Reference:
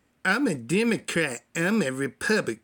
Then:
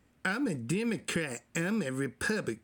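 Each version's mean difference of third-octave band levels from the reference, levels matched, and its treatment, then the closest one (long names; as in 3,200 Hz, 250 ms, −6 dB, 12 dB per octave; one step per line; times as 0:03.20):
2.5 dB: low-shelf EQ 190 Hz +7.5 dB
downward compressor, threshold −26 dBFS, peak gain reduction 9.5 dB
level −2 dB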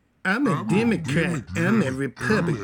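6.5 dB: bass and treble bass +6 dB, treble −6 dB
delay with pitch and tempo change per echo 118 ms, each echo −5 semitones, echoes 2, each echo −6 dB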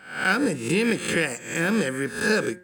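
4.5 dB: peak hold with a rise ahead of every peak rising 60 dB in 0.54 s
hum removal 179.7 Hz, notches 11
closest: first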